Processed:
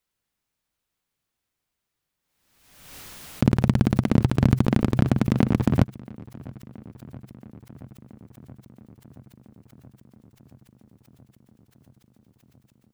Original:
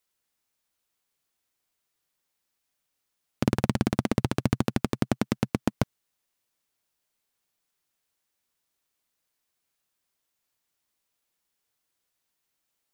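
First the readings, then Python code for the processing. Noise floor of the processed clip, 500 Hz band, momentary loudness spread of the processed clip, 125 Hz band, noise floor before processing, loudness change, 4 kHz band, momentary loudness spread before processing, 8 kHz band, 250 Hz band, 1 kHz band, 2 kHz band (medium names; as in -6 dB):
-83 dBFS, +2.5 dB, 20 LU, +9.0 dB, -81 dBFS, +6.5 dB, 0.0 dB, 4 LU, -1.0 dB, +6.0 dB, +1.5 dB, +1.5 dB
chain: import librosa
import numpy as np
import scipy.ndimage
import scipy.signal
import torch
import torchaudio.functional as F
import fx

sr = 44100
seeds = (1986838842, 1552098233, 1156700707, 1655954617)

y = fx.bass_treble(x, sr, bass_db=8, treble_db=-4)
y = fx.echo_filtered(y, sr, ms=676, feedback_pct=79, hz=3400.0, wet_db=-23)
y = fx.pre_swell(y, sr, db_per_s=53.0)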